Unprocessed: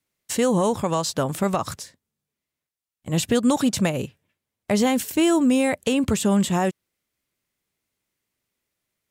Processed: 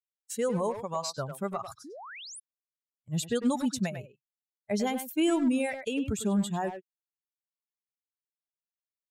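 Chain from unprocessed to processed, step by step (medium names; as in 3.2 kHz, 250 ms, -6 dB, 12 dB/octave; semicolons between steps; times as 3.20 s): expander on every frequency bin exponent 2; speakerphone echo 100 ms, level -8 dB; painted sound rise, 1.84–2.40 s, 250–11000 Hz -39 dBFS; trim -5 dB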